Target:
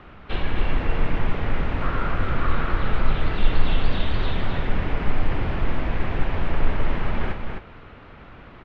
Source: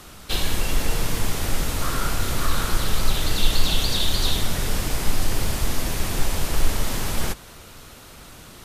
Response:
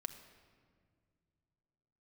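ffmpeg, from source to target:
-af "lowpass=frequency=2500:width=0.5412,lowpass=frequency=2500:width=1.3066,aecho=1:1:258:0.531"

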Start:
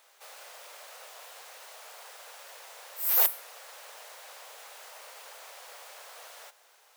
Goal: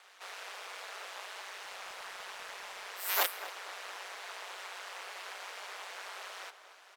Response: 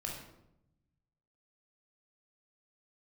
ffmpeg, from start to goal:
-filter_complex "[0:a]bandpass=frequency=1900:width_type=q:width=0.61:csg=0,aeval=exprs='val(0)*sin(2*PI*95*n/s)':channel_layout=same,asettb=1/sr,asplit=3[link_01][link_02][link_03];[link_01]atrim=end=1.624[link_04];[link_02]atrim=start=1.62:end=2.88,asetpts=PTS-STARTPTS,afade=type=in:duration=0.004:curve=qsin,afade=type=out:start_time=1.256:duration=0.004:curve=qsin,aeval=exprs='clip(val(0),-1,0.00422)':channel_layout=same[link_05];[link_03]atrim=start=2.876[link_06];[link_04][link_05]acrossfade=duration=0.004:curve1=hsin:curve2=qsin[link_07];[link_07][link_06]acrossfade=duration=0.004:curve1=qsin:curve2=hsin,asplit=2[link_08][link_09];[link_09]adelay=236,lowpass=frequency=1900:poles=1,volume=-11.5dB,asplit=2[link_10][link_11];[link_11]adelay=236,lowpass=frequency=1900:poles=1,volume=0.54,asplit=2[link_12][link_13];[link_13]adelay=236,lowpass=frequency=1900:poles=1,volume=0.54,asplit=2[link_14][link_15];[link_15]adelay=236,lowpass=frequency=1900:poles=1,volume=0.54,asplit=2[link_16][link_17];[link_17]adelay=236,lowpass=frequency=1900:poles=1,volume=0.54,asplit=2[link_18][link_19];[link_19]adelay=236,lowpass=frequency=1900:poles=1,volume=0.54[link_20];[link_10][link_12][link_14][link_16][link_18][link_20]amix=inputs=6:normalize=0[link_21];[link_08][link_21]amix=inputs=2:normalize=0,volume=9.5dB"

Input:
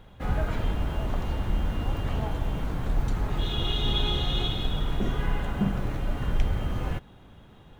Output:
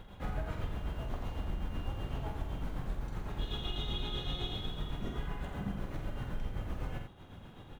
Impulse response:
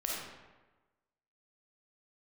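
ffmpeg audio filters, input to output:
-af "acompressor=threshold=-42dB:ratio=2,tremolo=f=7.9:d=0.69,aecho=1:1:47|86:0.473|0.447,volume=2dB"

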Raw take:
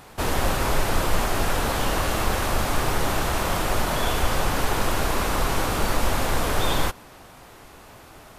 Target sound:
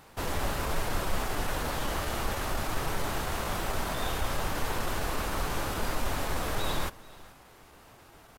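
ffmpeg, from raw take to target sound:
ffmpeg -i in.wav -af "asetrate=46722,aresample=44100,atempo=0.943874,aecho=1:1:431:0.0841,volume=-8dB" out.wav

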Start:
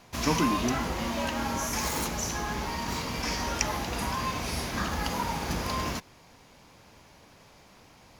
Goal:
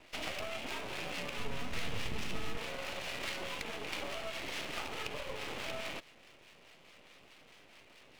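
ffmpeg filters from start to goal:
ffmpeg -i in.wav -filter_complex "[0:a]highpass=frequency=580:width_type=q:width=0.5412,highpass=frequency=580:width_type=q:width=1.307,lowpass=frequency=3400:width_type=q:width=0.5176,lowpass=frequency=3400:width_type=q:width=0.7071,lowpass=frequency=3400:width_type=q:width=1.932,afreqshift=-390,acompressor=threshold=-36dB:ratio=6,acrossover=split=780[link_01][link_02];[link_01]aeval=exprs='val(0)*(1-0.5/2+0.5/2*cos(2*PI*4.7*n/s))':channel_layout=same[link_03];[link_02]aeval=exprs='val(0)*(1-0.5/2-0.5/2*cos(2*PI*4.7*n/s))':channel_layout=same[link_04];[link_03][link_04]amix=inputs=2:normalize=0,aeval=exprs='max(val(0),0)':channel_layout=same,aexciter=amount=1.7:drive=8.7:freq=2300,asplit=3[link_05][link_06][link_07];[link_05]afade=type=out:start_time=1.37:duration=0.02[link_08];[link_06]asubboost=boost=6.5:cutoff=240,afade=type=in:start_time=1.37:duration=0.02,afade=type=out:start_time=2.56:duration=0.02[link_09];[link_07]afade=type=in:start_time=2.56:duration=0.02[link_10];[link_08][link_09][link_10]amix=inputs=3:normalize=0,volume=3.5dB" out.wav

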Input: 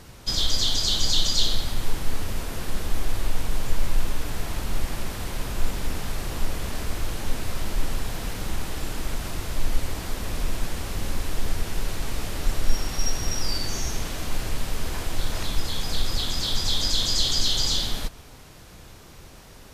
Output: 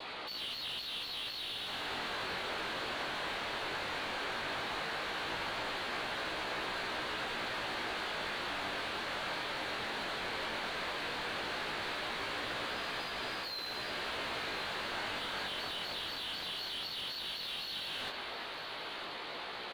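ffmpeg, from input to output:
ffmpeg -i in.wav -filter_complex "[0:a]adynamicequalizer=threshold=0.00126:dfrequency=1800:dqfactor=7.4:tfrequency=1800:tqfactor=7.4:attack=5:release=100:ratio=0.375:range=2:mode=boostabove:tftype=bell,afftfilt=real='re*lt(hypot(re,im),2)':imag='im*lt(hypot(re,im),2)':win_size=1024:overlap=0.75,highpass=200,aemphasis=mode=production:type=riaa,bandreject=frequency=60:width_type=h:width=6,bandreject=frequency=120:width_type=h:width=6,bandreject=frequency=180:width_type=h:width=6,bandreject=frequency=240:width_type=h:width=6,bandreject=frequency=300:width_type=h:width=6,acompressor=threshold=-24dB:ratio=6,aresample=11025,asoftclip=type=tanh:threshold=-27.5dB,aresample=44100,asetrate=39289,aresample=44100,atempo=1.12246,asplit=2[link_01][link_02];[link_02]highpass=frequency=720:poles=1,volume=26dB,asoftclip=type=tanh:threshold=-22.5dB[link_03];[link_01][link_03]amix=inputs=2:normalize=0,lowpass=frequency=1200:poles=1,volume=-6dB,flanger=delay=16:depth=6.7:speed=0.15,asplit=2[link_04][link_05];[link_05]aecho=0:1:967|1934|2901|3868|4835:0.251|0.128|0.0653|0.0333|0.017[link_06];[link_04][link_06]amix=inputs=2:normalize=0,volume=-1dB" out.wav

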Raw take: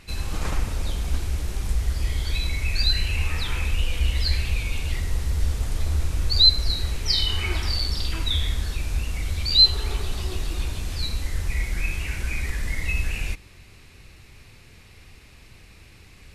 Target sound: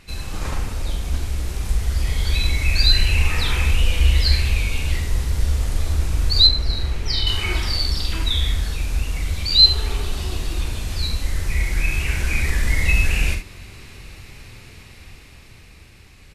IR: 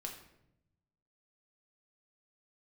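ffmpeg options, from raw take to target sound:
-filter_complex "[0:a]asplit=2[link_01][link_02];[link_02]aecho=0:1:44|71:0.398|0.335[link_03];[link_01][link_03]amix=inputs=2:normalize=0,dynaudnorm=framelen=590:gausssize=7:maxgain=8.5dB,asettb=1/sr,asplit=3[link_04][link_05][link_06];[link_04]atrim=end=6.474[link_07];[link_05]atrim=start=6.47:end=7.27,asetpts=PTS-STARTPTS,afade=type=in:duration=0.004:curve=qsin,afade=type=out:start_time=0.796:duration=0.004:curve=qsin,highshelf=frequency=4500:gain=-11.5[link_08];[link_06]atrim=start=7.266[link_09];[link_07][link_08]acrossfade=duration=0.004:curve1=hsin:curve2=qsin[link_10];[link_10][link_09]acrossfade=duration=0.004:curve1=qsin:curve2=hsin"

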